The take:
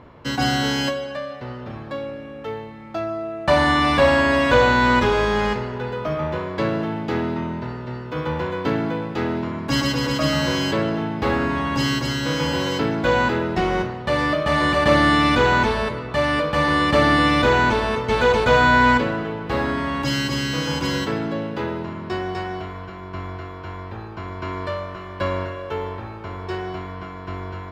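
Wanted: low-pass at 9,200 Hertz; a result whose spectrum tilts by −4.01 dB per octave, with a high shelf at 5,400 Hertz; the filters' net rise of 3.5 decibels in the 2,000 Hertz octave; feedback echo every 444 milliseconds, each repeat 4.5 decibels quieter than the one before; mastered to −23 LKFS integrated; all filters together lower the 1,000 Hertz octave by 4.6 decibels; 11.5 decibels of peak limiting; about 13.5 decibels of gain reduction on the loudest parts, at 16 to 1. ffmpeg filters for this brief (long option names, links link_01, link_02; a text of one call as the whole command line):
ffmpeg -i in.wav -af "lowpass=9200,equalizer=frequency=1000:width_type=o:gain=-7.5,equalizer=frequency=2000:width_type=o:gain=8.5,highshelf=frequency=5400:gain=-7,acompressor=threshold=-25dB:ratio=16,alimiter=level_in=1dB:limit=-24dB:level=0:latency=1,volume=-1dB,aecho=1:1:444|888|1332|1776|2220|2664|3108|3552|3996:0.596|0.357|0.214|0.129|0.0772|0.0463|0.0278|0.0167|0.01,volume=8.5dB" out.wav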